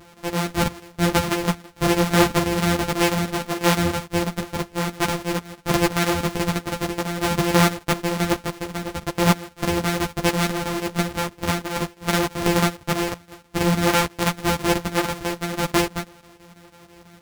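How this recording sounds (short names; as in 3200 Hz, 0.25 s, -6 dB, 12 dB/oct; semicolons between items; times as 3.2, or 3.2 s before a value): a buzz of ramps at a fixed pitch in blocks of 256 samples; chopped level 6.1 Hz, depth 65%, duty 80%; a shimmering, thickened sound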